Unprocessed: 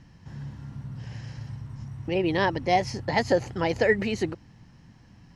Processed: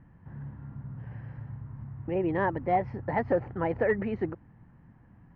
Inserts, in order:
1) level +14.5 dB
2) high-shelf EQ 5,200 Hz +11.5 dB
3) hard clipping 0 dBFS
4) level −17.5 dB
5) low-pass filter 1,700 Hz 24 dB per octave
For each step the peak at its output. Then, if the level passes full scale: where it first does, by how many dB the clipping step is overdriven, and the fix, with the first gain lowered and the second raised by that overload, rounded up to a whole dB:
+5.0, +6.0, 0.0, −17.5, −16.5 dBFS
step 1, 6.0 dB
step 1 +8.5 dB, step 4 −11.5 dB

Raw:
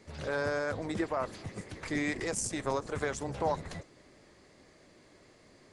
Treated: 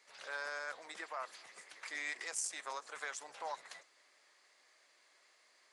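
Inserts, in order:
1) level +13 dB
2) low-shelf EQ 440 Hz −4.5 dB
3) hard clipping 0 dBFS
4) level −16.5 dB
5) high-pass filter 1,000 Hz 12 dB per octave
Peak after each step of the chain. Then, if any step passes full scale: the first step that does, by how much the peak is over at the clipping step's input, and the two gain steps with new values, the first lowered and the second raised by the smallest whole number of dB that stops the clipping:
−4.0, −6.0, −6.0, −22.5, −24.5 dBFS
no step passes full scale

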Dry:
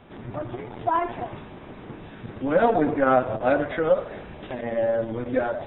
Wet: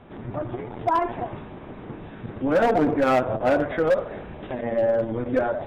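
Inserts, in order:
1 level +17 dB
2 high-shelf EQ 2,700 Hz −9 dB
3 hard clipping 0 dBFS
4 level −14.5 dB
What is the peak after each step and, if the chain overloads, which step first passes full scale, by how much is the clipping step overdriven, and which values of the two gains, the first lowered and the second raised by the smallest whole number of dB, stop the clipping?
+10.0, +9.5, 0.0, −14.5 dBFS
step 1, 9.5 dB
step 1 +7 dB, step 4 −4.5 dB

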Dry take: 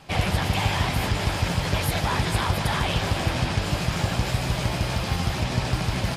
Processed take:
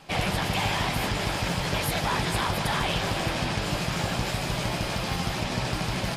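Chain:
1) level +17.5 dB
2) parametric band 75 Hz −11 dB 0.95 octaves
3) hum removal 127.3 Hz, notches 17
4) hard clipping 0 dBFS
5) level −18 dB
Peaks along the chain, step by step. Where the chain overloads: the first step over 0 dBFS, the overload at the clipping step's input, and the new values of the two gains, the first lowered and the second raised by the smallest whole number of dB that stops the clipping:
+5.5, +5.0, +4.5, 0.0, −18.0 dBFS
step 1, 4.5 dB
step 1 +12.5 dB, step 5 −13 dB

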